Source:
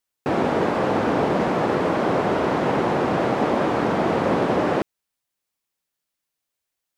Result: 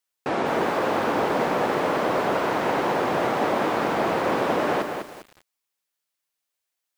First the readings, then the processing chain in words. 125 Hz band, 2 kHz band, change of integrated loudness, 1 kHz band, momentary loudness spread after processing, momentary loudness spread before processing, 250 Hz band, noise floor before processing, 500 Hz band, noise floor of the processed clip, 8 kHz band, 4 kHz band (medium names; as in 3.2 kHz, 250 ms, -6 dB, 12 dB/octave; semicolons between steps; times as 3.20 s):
-7.5 dB, +0.5 dB, -2.0 dB, -0.5 dB, 4 LU, 1 LU, -5.0 dB, -83 dBFS, -2.5 dB, -83 dBFS, no reading, +1.0 dB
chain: bass shelf 330 Hz -10.5 dB; bit-crushed delay 200 ms, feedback 35%, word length 7-bit, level -5.5 dB